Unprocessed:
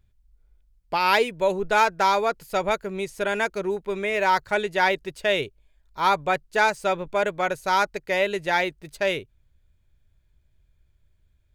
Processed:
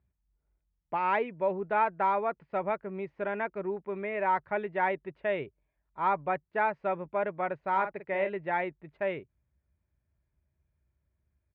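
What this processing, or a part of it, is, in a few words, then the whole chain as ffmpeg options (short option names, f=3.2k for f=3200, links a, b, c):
bass cabinet: -filter_complex "[0:a]highpass=f=62:w=0.5412,highpass=f=62:w=1.3066,equalizer=f=100:t=q:w=4:g=-8,equalizer=f=460:t=q:w=4:g=-4,equalizer=f=1.5k:t=q:w=4:g=-5,lowpass=f=2k:w=0.5412,lowpass=f=2k:w=1.3066,asplit=3[a][b][c];[a]afade=t=out:st=7.73:d=0.02[d];[b]asplit=2[e][f];[f]adelay=47,volume=-8.5dB[g];[e][g]amix=inputs=2:normalize=0,afade=t=in:st=7.73:d=0.02,afade=t=out:st=8.28:d=0.02[h];[c]afade=t=in:st=8.28:d=0.02[i];[d][h][i]amix=inputs=3:normalize=0,volume=-5.5dB"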